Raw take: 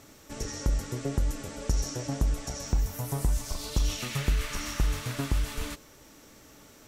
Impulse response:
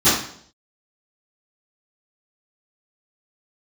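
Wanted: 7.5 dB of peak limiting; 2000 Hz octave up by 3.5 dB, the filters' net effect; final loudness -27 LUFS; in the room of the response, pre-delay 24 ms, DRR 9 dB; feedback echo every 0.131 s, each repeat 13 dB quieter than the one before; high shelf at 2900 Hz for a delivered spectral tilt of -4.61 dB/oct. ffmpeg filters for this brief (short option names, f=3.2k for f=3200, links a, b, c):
-filter_complex "[0:a]equalizer=f=2k:t=o:g=6.5,highshelf=f=2.9k:g=-5.5,alimiter=limit=-22dB:level=0:latency=1,aecho=1:1:131|262|393:0.224|0.0493|0.0108,asplit=2[a][b];[1:a]atrim=start_sample=2205,adelay=24[c];[b][c]afir=irnorm=-1:irlink=0,volume=-30.5dB[d];[a][d]amix=inputs=2:normalize=0,volume=6.5dB"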